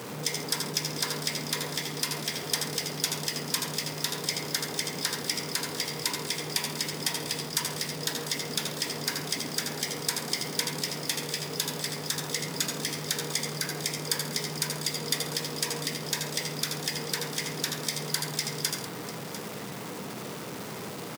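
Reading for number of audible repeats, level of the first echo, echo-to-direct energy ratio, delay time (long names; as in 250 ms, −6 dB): 3, −7.0 dB, −4.0 dB, 79 ms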